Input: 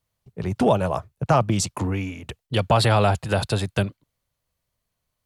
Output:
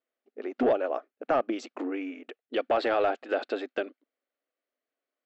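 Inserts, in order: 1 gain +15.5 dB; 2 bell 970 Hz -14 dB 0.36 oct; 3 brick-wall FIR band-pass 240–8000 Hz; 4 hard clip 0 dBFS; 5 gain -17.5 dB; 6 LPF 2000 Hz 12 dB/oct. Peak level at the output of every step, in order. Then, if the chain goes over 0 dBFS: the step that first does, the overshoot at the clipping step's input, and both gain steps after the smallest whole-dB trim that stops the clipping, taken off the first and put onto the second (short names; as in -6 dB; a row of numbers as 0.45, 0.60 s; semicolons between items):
+8.5, +7.5, +5.5, 0.0, -17.5, -17.0 dBFS; step 1, 5.5 dB; step 1 +9.5 dB, step 5 -11.5 dB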